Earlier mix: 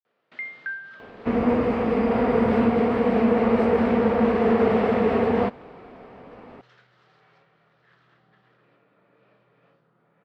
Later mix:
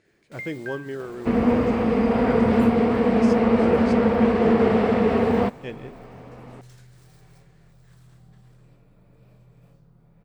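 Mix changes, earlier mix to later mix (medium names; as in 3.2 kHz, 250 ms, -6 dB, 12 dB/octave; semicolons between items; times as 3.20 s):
speech: unmuted; first sound: remove cabinet simulation 270–4600 Hz, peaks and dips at 1.3 kHz +7 dB, 1.8 kHz +6 dB, 3 kHz +4 dB; master: add tone controls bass +4 dB, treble +7 dB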